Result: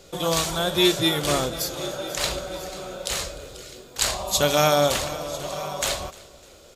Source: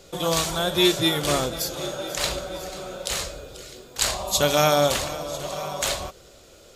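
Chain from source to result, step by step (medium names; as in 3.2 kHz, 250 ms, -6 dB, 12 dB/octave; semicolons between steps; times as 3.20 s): feedback delay 301 ms, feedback 43%, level -22 dB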